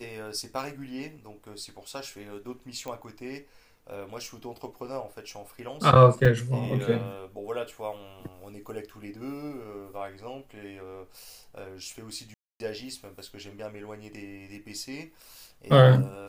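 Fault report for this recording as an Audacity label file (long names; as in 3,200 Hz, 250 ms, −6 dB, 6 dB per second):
2.880000	2.880000	click −23 dBFS
6.250000	6.250000	drop-out 3.3 ms
12.340000	12.600000	drop-out 261 ms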